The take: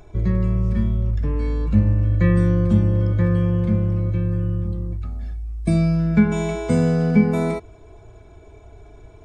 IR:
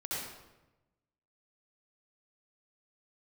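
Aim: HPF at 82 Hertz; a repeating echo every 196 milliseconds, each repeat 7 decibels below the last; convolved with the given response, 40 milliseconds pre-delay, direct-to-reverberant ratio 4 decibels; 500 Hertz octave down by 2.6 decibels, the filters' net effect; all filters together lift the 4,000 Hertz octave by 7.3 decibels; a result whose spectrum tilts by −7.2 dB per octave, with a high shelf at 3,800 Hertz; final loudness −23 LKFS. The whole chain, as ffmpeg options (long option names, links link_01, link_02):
-filter_complex "[0:a]highpass=82,equalizer=frequency=500:width_type=o:gain=-3.5,highshelf=frequency=3800:gain=8,equalizer=frequency=4000:width_type=o:gain=4,aecho=1:1:196|392|588|784|980:0.447|0.201|0.0905|0.0407|0.0183,asplit=2[link_01][link_02];[1:a]atrim=start_sample=2205,adelay=40[link_03];[link_02][link_03]afir=irnorm=-1:irlink=0,volume=-7.5dB[link_04];[link_01][link_04]amix=inputs=2:normalize=0,volume=-2dB"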